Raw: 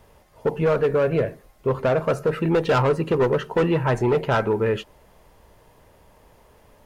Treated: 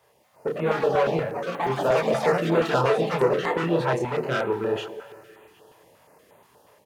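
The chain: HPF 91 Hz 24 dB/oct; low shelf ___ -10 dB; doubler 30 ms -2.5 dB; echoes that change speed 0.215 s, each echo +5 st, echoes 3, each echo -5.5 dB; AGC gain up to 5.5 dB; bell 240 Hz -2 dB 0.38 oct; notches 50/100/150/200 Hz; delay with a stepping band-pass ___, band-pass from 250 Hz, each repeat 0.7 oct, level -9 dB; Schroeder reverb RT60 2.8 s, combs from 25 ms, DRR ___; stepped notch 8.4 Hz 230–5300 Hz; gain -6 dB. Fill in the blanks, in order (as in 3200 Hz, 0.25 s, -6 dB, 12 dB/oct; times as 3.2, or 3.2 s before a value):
170 Hz, 0.128 s, 16.5 dB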